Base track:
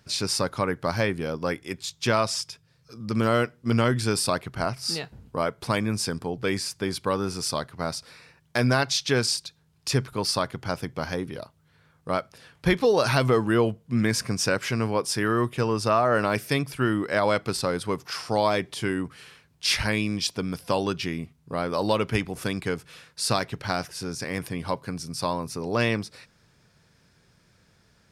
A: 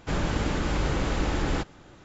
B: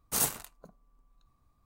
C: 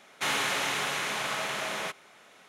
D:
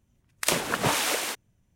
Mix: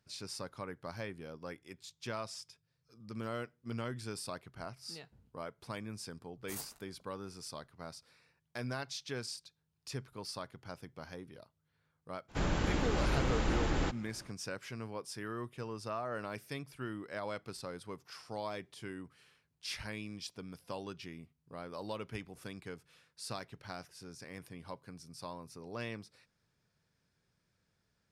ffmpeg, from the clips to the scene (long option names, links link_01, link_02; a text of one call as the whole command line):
ffmpeg -i bed.wav -i cue0.wav -i cue1.wav -filter_complex "[0:a]volume=-17.5dB[link_01];[2:a]atrim=end=1.65,asetpts=PTS-STARTPTS,volume=-16.5dB,afade=type=in:duration=0.004:curve=hsin,afade=type=out:start_time=1.646:duration=0.004:curve=hsin,adelay=6360[link_02];[1:a]atrim=end=2.04,asetpts=PTS-STARTPTS,volume=-5.5dB,afade=type=in:duration=0.02,afade=type=out:start_time=2.02:duration=0.02,adelay=12280[link_03];[link_01][link_02][link_03]amix=inputs=3:normalize=0" out.wav